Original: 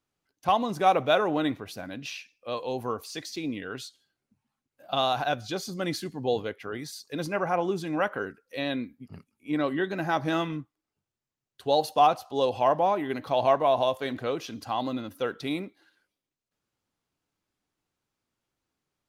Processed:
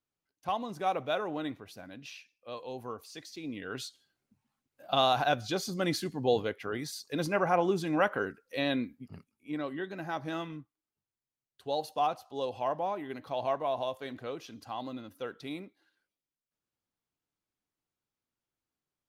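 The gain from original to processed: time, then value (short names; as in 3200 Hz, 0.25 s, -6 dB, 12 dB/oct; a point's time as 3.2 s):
3.39 s -9 dB
3.82 s 0 dB
8.92 s 0 dB
9.64 s -9 dB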